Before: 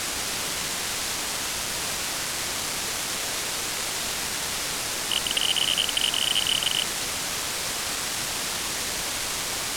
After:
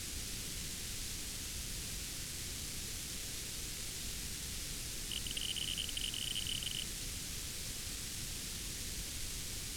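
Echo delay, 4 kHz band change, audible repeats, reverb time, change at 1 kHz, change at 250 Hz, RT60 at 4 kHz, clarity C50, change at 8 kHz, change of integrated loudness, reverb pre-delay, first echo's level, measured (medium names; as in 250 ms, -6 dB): no echo, -15.5 dB, no echo, no reverb, -25.0 dB, -11.0 dB, no reverb, no reverb, -13.5 dB, -15.0 dB, no reverb, no echo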